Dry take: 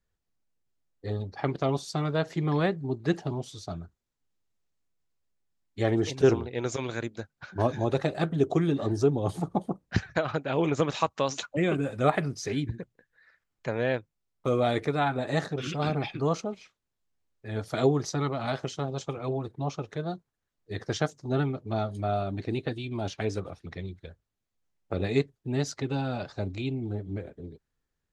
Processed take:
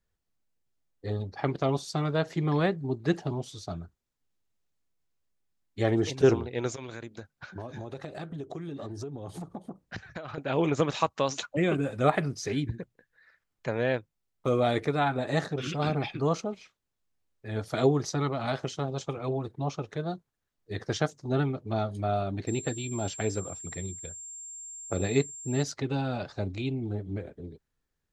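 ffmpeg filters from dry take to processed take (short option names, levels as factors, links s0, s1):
-filter_complex "[0:a]asettb=1/sr,asplit=3[s0][s1][s2];[s0]atrim=end=6.704[s3];[s1]atrim=start=6.7:end=10.38,asetpts=PTS-STARTPTS,afade=t=in:d=0.004:c=qsin,afade=t=out:st=3.676:d=0.004:c=qsin,acompressor=threshold=0.0178:ratio=6:attack=3.2:release=140:knee=1:detection=peak[s4];[s2]atrim=start=10.376[s5];[s3][s4]acrossfade=d=0.004:c1=hsin:c2=qsin[s6];[s6][s5]acrossfade=d=0.004:c1=qsin:c2=hsin,asettb=1/sr,asplit=3[s7][s8][s9];[s7]atrim=end=22.474[s10];[s8]atrim=start=22.47:end=25.63,asetpts=PTS-STARTPTS,afade=t=in:d=0.004:c=qsin,afade=t=out:st=3.156:d=0.004:c=qsin,aeval=exprs='val(0)+0.01*sin(2*PI*7400*n/s)':c=same[s11];[s9]atrim=start=25.626[s12];[s10][s11]acrossfade=d=0.004:c1=hsin:c2=qsin[s13];[s13][s12]acrossfade=d=0.004:c1=qsin:c2=hsin"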